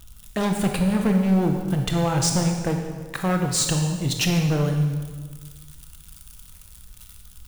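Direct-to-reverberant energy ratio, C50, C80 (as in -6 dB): 3.0 dB, 4.5 dB, 6.5 dB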